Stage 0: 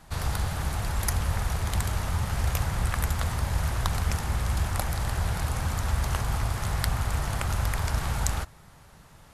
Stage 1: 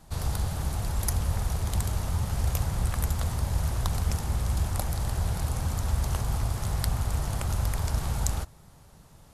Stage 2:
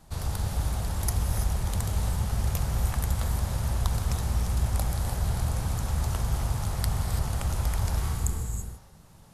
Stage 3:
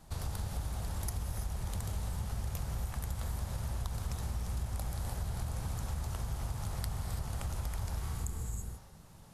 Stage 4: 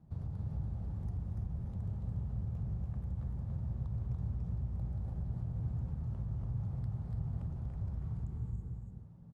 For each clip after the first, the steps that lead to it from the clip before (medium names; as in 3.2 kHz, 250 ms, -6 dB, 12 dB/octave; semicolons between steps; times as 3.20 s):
peaking EQ 1.8 kHz -8 dB 1.9 oct
gated-style reverb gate 360 ms rising, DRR 4 dB; spectral replace 8.09–8.90 s, 500–6400 Hz both; trim -1.5 dB
compression 4:1, threshold -32 dBFS, peak gain reduction 11 dB; trim -2 dB
band-pass filter 140 Hz, Q 1.3; delay 287 ms -4 dB; trim +3 dB